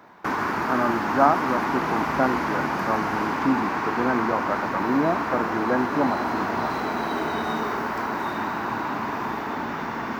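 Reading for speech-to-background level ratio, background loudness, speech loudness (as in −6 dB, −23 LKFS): 0.0 dB, −26.5 LKFS, −26.5 LKFS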